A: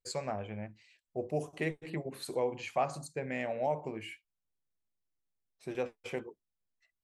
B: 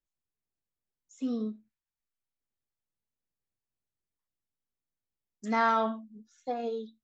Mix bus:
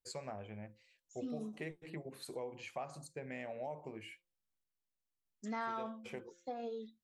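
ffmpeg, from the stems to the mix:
ffmpeg -i stem1.wav -i stem2.wav -filter_complex "[0:a]volume=-6.5dB[link_01];[1:a]volume=-5dB,asplit=3[link_02][link_03][link_04];[link_02]atrim=end=4.64,asetpts=PTS-STARTPTS,afade=type=out:start_time=4.636:duration=0.004:curve=hsin[link_05];[link_03]atrim=start=4.64:end=5.25,asetpts=PTS-STARTPTS,volume=0[link_06];[link_04]atrim=start=5.25,asetpts=PTS-STARTPTS,afade=type=in:duration=0.004:curve=hsin[link_07];[link_05][link_06][link_07]concat=n=3:v=0:a=1[link_08];[link_01][link_08]amix=inputs=2:normalize=0,bandreject=frequency=173.9:width_type=h:width=4,bandreject=frequency=347.8:width_type=h:width=4,bandreject=frequency=521.7:width_type=h:width=4,acompressor=threshold=-40dB:ratio=3" out.wav

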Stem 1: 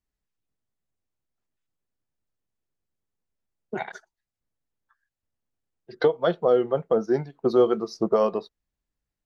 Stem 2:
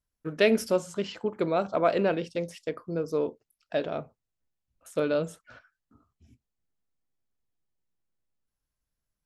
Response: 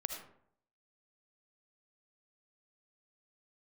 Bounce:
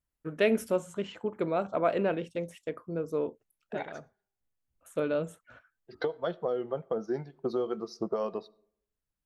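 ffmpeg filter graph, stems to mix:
-filter_complex "[0:a]acompressor=threshold=-20dB:ratio=5,volume=-7.5dB,asplit=3[link_01][link_02][link_03];[link_02]volume=-20dB[link_04];[1:a]equalizer=frequency=4900:width=2.4:gain=-14,volume=-3dB[link_05];[link_03]apad=whole_len=408198[link_06];[link_05][link_06]sidechaincompress=threshold=-39dB:ratio=8:attack=7.7:release=1400[link_07];[2:a]atrim=start_sample=2205[link_08];[link_04][link_08]afir=irnorm=-1:irlink=0[link_09];[link_01][link_07][link_09]amix=inputs=3:normalize=0"

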